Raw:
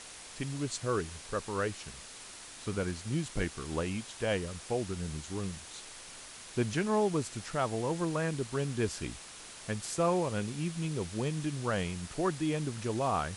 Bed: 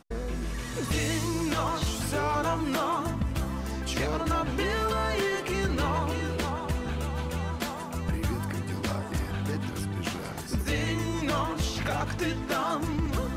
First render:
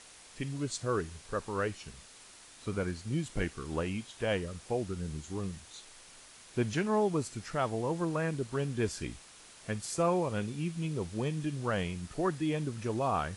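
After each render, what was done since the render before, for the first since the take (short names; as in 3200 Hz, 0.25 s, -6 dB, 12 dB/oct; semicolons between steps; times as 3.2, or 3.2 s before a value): noise print and reduce 6 dB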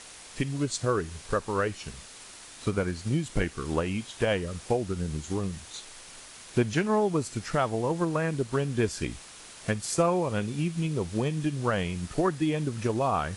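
transient shaper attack +5 dB, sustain 0 dB; in parallel at +2 dB: compressor, threshold -35 dBFS, peak gain reduction 13.5 dB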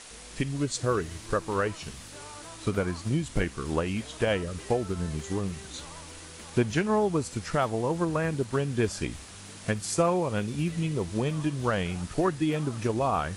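add bed -18.5 dB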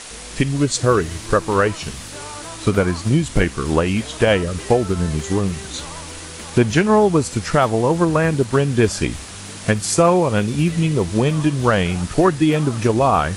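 gain +11 dB; limiter -3 dBFS, peak gain reduction 2.5 dB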